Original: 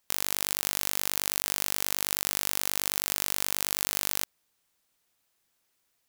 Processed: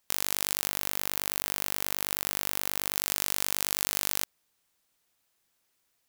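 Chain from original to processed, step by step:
0:00.66–0:02.96: parametric band 6,700 Hz −5 dB 2.2 octaves

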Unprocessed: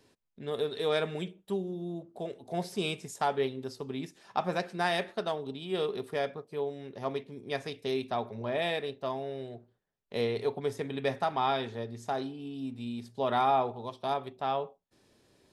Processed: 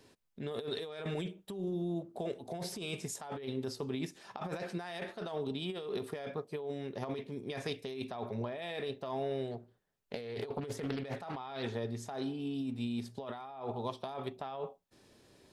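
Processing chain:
compressor whose output falls as the input rises −37 dBFS, ratio −1
0:09.51–0:11.63: highs frequency-modulated by the lows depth 0.45 ms
level −1.5 dB

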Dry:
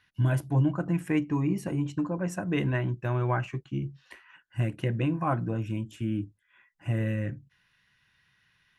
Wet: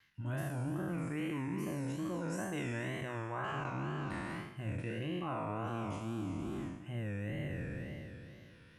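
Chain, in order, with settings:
peak hold with a decay on every bin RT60 2.72 s
reversed playback
downward compressor 6 to 1, threshold −36 dBFS, peak gain reduction 17 dB
reversed playback
mains-hum notches 60/120 Hz
tape wow and flutter 130 cents

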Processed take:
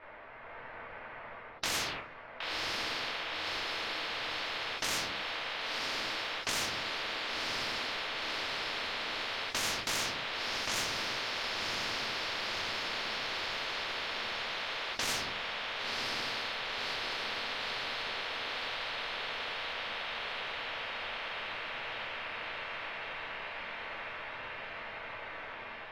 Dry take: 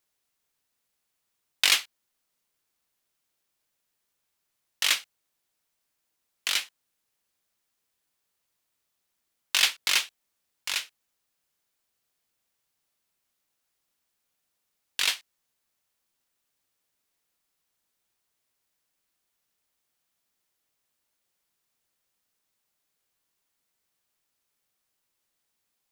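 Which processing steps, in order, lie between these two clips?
low-pass that shuts in the quiet parts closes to 2,500 Hz, open at −27 dBFS
flat-topped bell 1,100 Hz +11 dB 2.7 octaves
automatic gain control gain up to 5 dB
brickwall limiter −15.5 dBFS, peak gain reduction 13.5 dB
high-frequency loss of the air 350 metres
feedback delay with all-pass diffusion 1,041 ms, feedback 69%, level −11.5 dB
rectangular room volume 190 cubic metres, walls furnished, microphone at 2.7 metres
every bin compressed towards the loudest bin 10 to 1
level −7.5 dB

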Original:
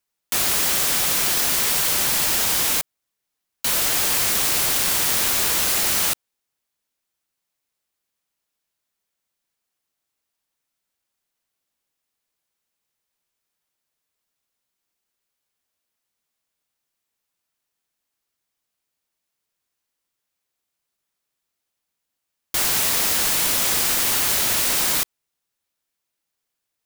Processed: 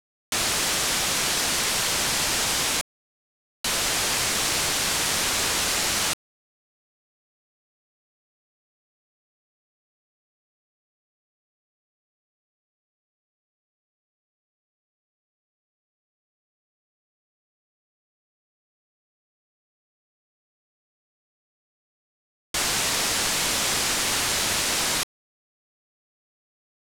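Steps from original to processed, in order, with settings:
low-pass filter 8,400 Hz 12 dB per octave
bit-depth reduction 10 bits, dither none

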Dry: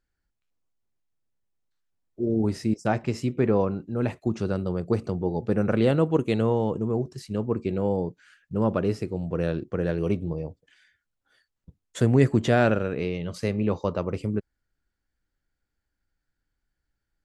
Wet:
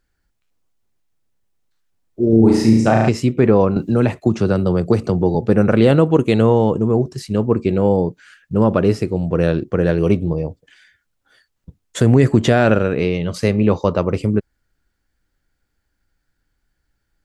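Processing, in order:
0:02.29–0:03.09: flutter between parallel walls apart 6.1 metres, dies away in 0.79 s
boost into a limiter +11 dB
0:03.76–0:05.35: multiband upward and downward compressor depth 70%
level −1 dB

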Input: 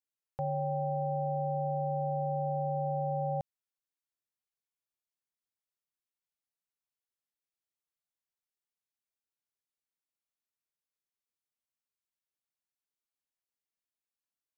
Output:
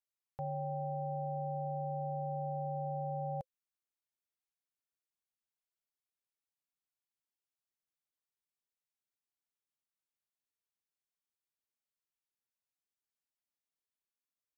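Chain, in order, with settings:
notch filter 520 Hz, Q 12
level −5 dB

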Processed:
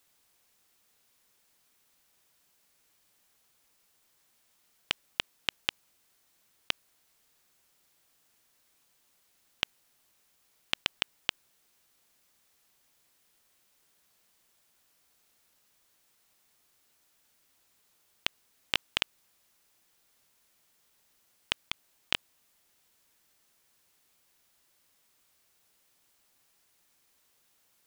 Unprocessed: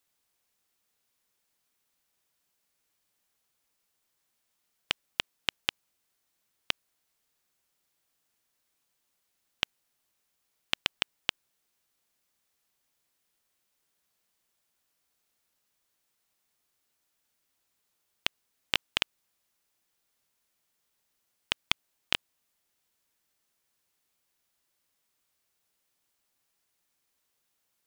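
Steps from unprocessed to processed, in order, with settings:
compressor whose output falls as the input rises −30 dBFS, ratio −0.5
level +3.5 dB

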